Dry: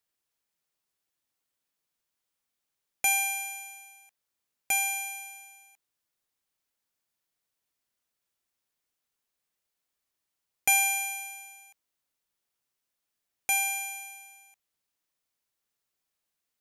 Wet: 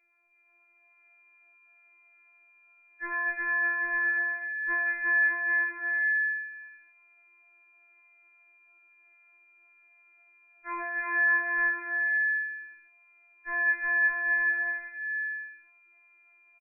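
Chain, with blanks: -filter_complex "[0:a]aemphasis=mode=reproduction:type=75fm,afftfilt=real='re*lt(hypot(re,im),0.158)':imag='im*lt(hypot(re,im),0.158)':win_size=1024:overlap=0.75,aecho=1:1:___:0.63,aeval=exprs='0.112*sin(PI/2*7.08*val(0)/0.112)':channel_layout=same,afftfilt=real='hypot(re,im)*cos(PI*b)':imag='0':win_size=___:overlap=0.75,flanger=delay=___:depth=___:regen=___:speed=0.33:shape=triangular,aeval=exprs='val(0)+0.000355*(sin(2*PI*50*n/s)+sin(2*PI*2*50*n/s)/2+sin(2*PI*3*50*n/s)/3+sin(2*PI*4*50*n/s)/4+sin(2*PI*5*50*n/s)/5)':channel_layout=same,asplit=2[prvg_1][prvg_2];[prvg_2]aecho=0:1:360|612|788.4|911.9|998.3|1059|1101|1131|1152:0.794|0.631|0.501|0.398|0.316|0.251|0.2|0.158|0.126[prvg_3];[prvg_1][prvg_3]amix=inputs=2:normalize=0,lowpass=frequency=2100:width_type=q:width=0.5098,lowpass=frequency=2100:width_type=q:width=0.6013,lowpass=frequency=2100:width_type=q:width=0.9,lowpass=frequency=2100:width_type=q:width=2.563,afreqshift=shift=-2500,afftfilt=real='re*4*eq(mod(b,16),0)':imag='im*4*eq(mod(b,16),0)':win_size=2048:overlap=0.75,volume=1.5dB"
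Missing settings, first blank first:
5.9, 2048, 5, 2.8, 33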